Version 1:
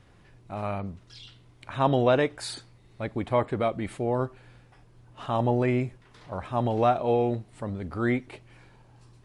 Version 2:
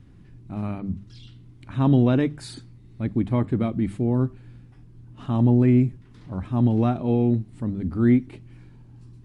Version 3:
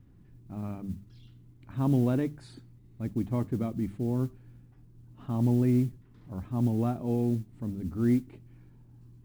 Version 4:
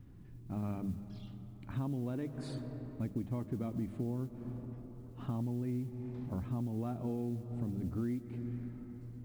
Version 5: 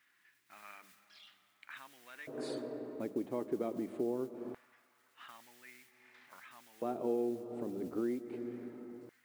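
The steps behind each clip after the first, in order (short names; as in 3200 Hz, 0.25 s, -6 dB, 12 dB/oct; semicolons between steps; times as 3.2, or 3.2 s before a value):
resonant low shelf 380 Hz +12.5 dB, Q 1.5; notches 50/100/150/200 Hz; gain -4.5 dB
high shelf 2300 Hz -10 dB; modulation noise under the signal 31 dB; gain -7 dB
on a send at -15.5 dB: reverb RT60 4.0 s, pre-delay 80 ms; on the sum: compressor 16:1, threshold -35 dBFS, peak gain reduction 16 dB; gain +2 dB
LFO high-pass square 0.22 Hz 410–1800 Hz; gain +3 dB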